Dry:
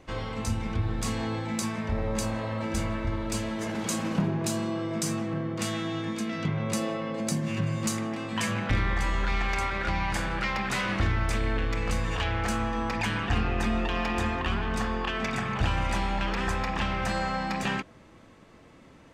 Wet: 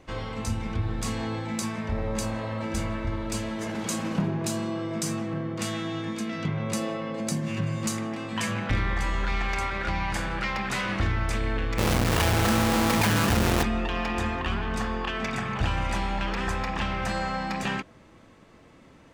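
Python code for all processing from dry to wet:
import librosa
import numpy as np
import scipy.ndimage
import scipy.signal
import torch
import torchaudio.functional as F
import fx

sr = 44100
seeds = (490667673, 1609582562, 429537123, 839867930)

y = fx.chain(x, sr, fx.halfwave_hold(),
    fx.highpass(hz=77.0, slope=12),
    fx.env_flatten(amount_pct=70), at=(11.78, 13.63))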